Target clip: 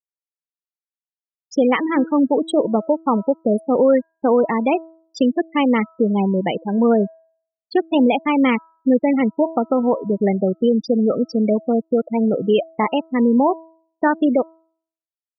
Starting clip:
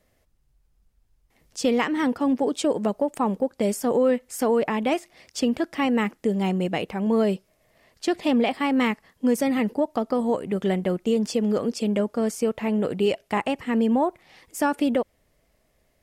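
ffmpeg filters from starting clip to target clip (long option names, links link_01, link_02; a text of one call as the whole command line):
ffmpeg -i in.wav -af "afftfilt=real='re*gte(hypot(re,im),0.0891)':imag='im*gte(hypot(re,im),0.0891)':win_size=1024:overlap=0.75,asetrate=45938,aresample=44100,bandreject=frequency=325.1:width_type=h:width=4,bandreject=frequency=650.2:width_type=h:width=4,bandreject=frequency=975.3:width_type=h:width=4,bandreject=frequency=1300.4:width_type=h:width=4,bandreject=frequency=1625.5:width_type=h:width=4,volume=6dB" out.wav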